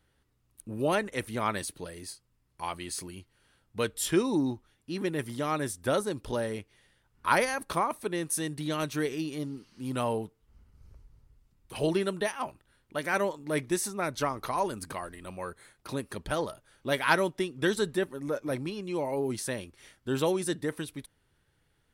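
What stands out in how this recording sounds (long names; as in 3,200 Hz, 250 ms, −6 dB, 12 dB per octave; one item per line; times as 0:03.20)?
background noise floor −72 dBFS
spectral slope −4.5 dB per octave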